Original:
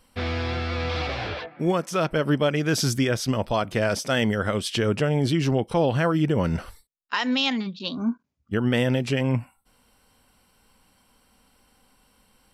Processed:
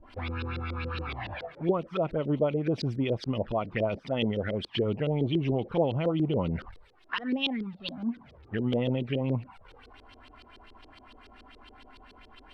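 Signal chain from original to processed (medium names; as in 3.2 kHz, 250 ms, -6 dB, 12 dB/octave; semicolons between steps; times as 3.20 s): jump at every zero crossing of -38 dBFS; peaking EQ 6.7 kHz -8 dB 0.57 oct; touch-sensitive flanger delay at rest 3.4 ms, full sweep at -18.5 dBFS; LFO low-pass saw up 7.1 Hz 350–4400 Hz; trim -6.5 dB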